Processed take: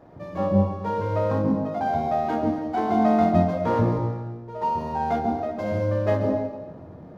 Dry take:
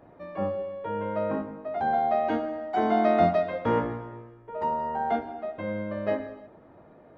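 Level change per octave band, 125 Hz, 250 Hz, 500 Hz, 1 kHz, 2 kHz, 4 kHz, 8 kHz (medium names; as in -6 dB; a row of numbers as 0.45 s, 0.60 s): +12.5 dB, +7.5 dB, +2.5 dB, +2.0 dB, -0.5 dB, +1.0 dB, no reading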